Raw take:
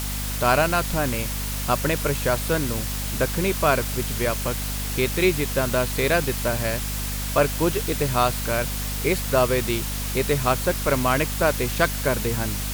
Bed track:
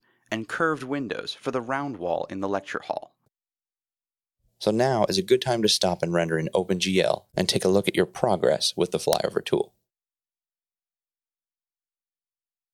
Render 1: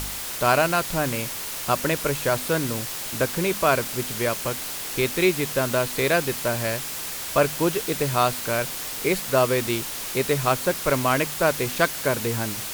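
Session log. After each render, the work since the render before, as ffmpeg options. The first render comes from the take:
ffmpeg -i in.wav -af "bandreject=frequency=50:width_type=h:width=4,bandreject=frequency=100:width_type=h:width=4,bandreject=frequency=150:width_type=h:width=4,bandreject=frequency=200:width_type=h:width=4,bandreject=frequency=250:width_type=h:width=4" out.wav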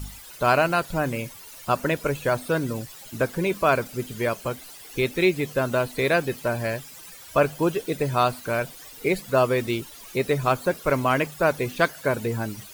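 ffmpeg -i in.wav -af "afftdn=noise_reduction=16:noise_floor=-32" out.wav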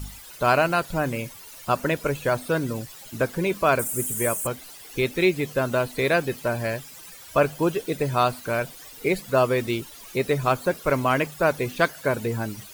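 ffmpeg -i in.wav -filter_complex "[0:a]asettb=1/sr,asplit=3[link_01][link_02][link_03];[link_01]atrim=end=3.794[link_04];[link_02]atrim=start=3.79:end=4.47,asetpts=PTS-STARTPTS,afade=type=in:duration=0.004:curve=qsin,afade=type=out:start_time=0.676:duration=0.004:curve=qsin,highshelf=frequency=6300:width_type=q:width=3:gain=12.5[link_05];[link_03]atrim=start=4.466[link_06];[link_04][link_05]acrossfade=duration=0.004:curve1=hsin:curve2=qsin[link_07];[link_07][link_06]acrossfade=duration=0.004:curve1=qsin:curve2=hsin" out.wav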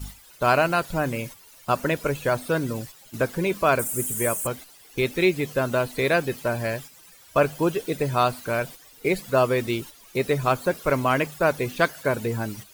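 ffmpeg -i in.wav -af "agate=range=-7dB:threshold=-38dB:ratio=16:detection=peak" out.wav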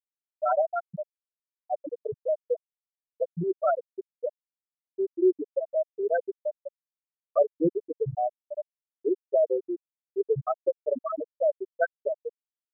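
ffmpeg -i in.wav -af "highshelf=frequency=2900:gain=-9,afftfilt=real='re*gte(hypot(re,im),0.562)':imag='im*gte(hypot(re,im),0.562)':win_size=1024:overlap=0.75" out.wav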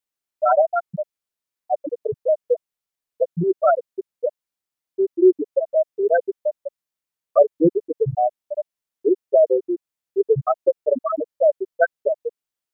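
ffmpeg -i in.wav -af "volume=8dB" out.wav

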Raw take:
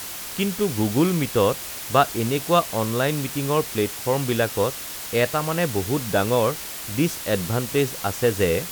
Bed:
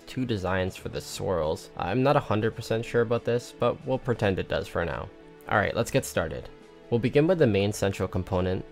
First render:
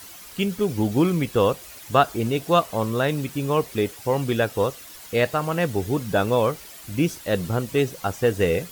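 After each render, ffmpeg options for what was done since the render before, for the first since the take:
ffmpeg -i in.wav -af "afftdn=noise_reduction=11:noise_floor=-34" out.wav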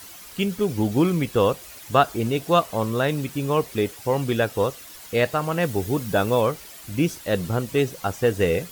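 ffmpeg -i in.wav -filter_complex "[0:a]asettb=1/sr,asplit=3[link_01][link_02][link_03];[link_01]atrim=end=5.634[link_04];[link_02]atrim=start=5.63:end=6.41,asetpts=PTS-STARTPTS,afade=type=in:duration=0.004:curve=qsin,afade=type=out:start_time=0.776:duration=0.004:curve=qsin,highshelf=frequency=9100:gain=5[link_05];[link_03]atrim=start=6.406[link_06];[link_04][link_05]acrossfade=duration=0.004:curve1=hsin:curve2=qsin[link_07];[link_07][link_06]acrossfade=duration=0.004:curve1=qsin:curve2=hsin" out.wav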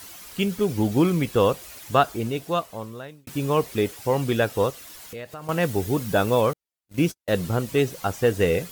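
ffmpeg -i in.wav -filter_complex "[0:a]asettb=1/sr,asplit=3[link_01][link_02][link_03];[link_01]atrim=end=4.704[link_04];[link_02]atrim=start=4.7:end=5.49,asetpts=PTS-STARTPTS,afade=type=in:duration=0.004:curve=qsin,afade=type=out:start_time=0.786:duration=0.004:curve=qsin,acompressor=threshold=-38dB:ratio=3:attack=3.2:release=140:knee=1:detection=peak[link_05];[link_03]atrim=start=5.486[link_06];[link_04][link_05]acrossfade=duration=0.004:curve1=hsin:curve2=qsin[link_07];[link_07][link_06]acrossfade=duration=0.004:curve1=qsin:curve2=hsin,asettb=1/sr,asplit=3[link_08][link_09][link_10];[link_08]atrim=end=6.534[link_11];[link_09]atrim=start=6.53:end=7.43,asetpts=PTS-STARTPTS,afade=type=in:duration=0.004:curve=qsin,afade=type=out:start_time=0.896:duration=0.004:curve=qsin,agate=range=-50dB:threshold=-31dB:ratio=16:release=100:detection=peak[link_12];[link_10]atrim=start=7.426[link_13];[link_11][link_12]acrossfade=duration=0.004:curve1=hsin:curve2=qsin[link_14];[link_14][link_13]acrossfade=duration=0.004:curve1=qsin:curve2=hsin,asplit=2[link_15][link_16];[link_15]atrim=end=3.27,asetpts=PTS-STARTPTS,afade=type=out:start_time=1.8:duration=1.47[link_17];[link_16]atrim=start=3.27,asetpts=PTS-STARTPTS,afade=type=in:duration=0.004:curve=hsin[link_18];[link_17][link_18]concat=n=2:v=0:a=1" out.wav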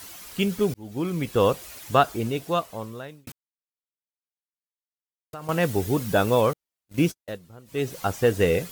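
ffmpeg -i in.wav -filter_complex "[0:a]asplit=6[link_01][link_02][link_03][link_04][link_05][link_06];[link_01]atrim=end=0.74,asetpts=PTS-STARTPTS,afade=type=out:start_time=0.736:duration=0.004:curve=hsin[link_07];[link_02]atrim=start=0.74:end=3.32,asetpts=PTS-STARTPTS,afade=type=in:duration=0.75,afade=type=out:start_time=2.576:duration=0.004:curve=hsin[link_08];[link_03]atrim=start=3.32:end=5.33,asetpts=PTS-STARTPTS,volume=0[link_09];[link_04]atrim=start=5.33:end=7.39,asetpts=PTS-STARTPTS,afade=type=in:duration=0.004:curve=hsin,afade=type=out:start_time=1.74:duration=0.32:silence=0.0749894[link_10];[link_05]atrim=start=7.39:end=7.65,asetpts=PTS-STARTPTS,volume=-22.5dB[link_11];[link_06]atrim=start=7.65,asetpts=PTS-STARTPTS,afade=type=in:duration=0.32:silence=0.0749894[link_12];[link_07][link_08][link_09][link_10][link_11][link_12]concat=n=6:v=0:a=1" out.wav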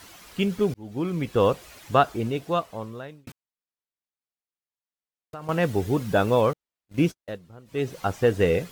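ffmpeg -i in.wav -af "lowpass=frequency=3600:poles=1" out.wav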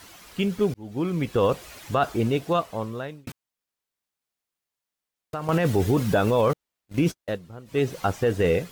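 ffmpeg -i in.wav -af "dynaudnorm=framelen=550:gausssize=5:maxgain=9dB,alimiter=limit=-12dB:level=0:latency=1:release=16" out.wav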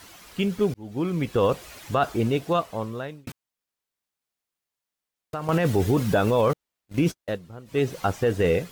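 ffmpeg -i in.wav -af anull out.wav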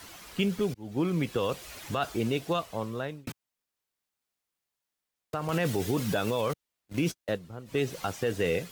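ffmpeg -i in.wav -filter_complex "[0:a]acrossover=split=110|2100[link_01][link_02][link_03];[link_01]acompressor=threshold=-47dB:ratio=6[link_04];[link_02]alimiter=limit=-19.5dB:level=0:latency=1:release=359[link_05];[link_04][link_05][link_03]amix=inputs=3:normalize=0" out.wav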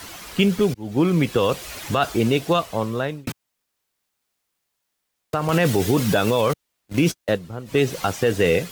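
ffmpeg -i in.wav -af "volume=9.5dB" out.wav

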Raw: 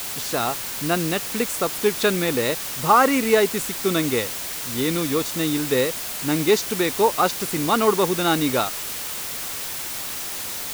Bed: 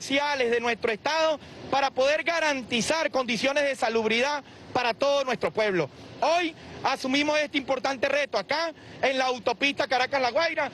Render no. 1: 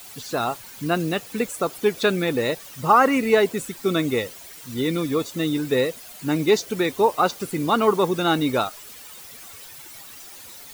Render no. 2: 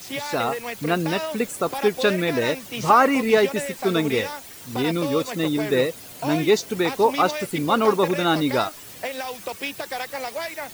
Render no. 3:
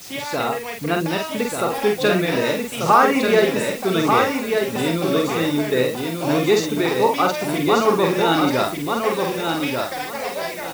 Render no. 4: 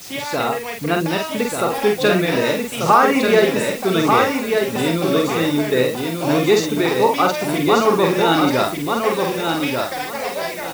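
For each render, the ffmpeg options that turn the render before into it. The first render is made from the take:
ffmpeg -i in.wav -af "afftdn=noise_reduction=14:noise_floor=-30" out.wav
ffmpeg -i in.wav -i bed.wav -filter_complex "[1:a]volume=-6dB[link_01];[0:a][link_01]amix=inputs=2:normalize=0" out.wav
ffmpeg -i in.wav -filter_complex "[0:a]asplit=2[link_01][link_02];[link_02]adelay=48,volume=-4dB[link_03];[link_01][link_03]amix=inputs=2:normalize=0,aecho=1:1:1189|2378|3567:0.596|0.137|0.0315" out.wav
ffmpeg -i in.wav -af "volume=2dB,alimiter=limit=-3dB:level=0:latency=1" out.wav

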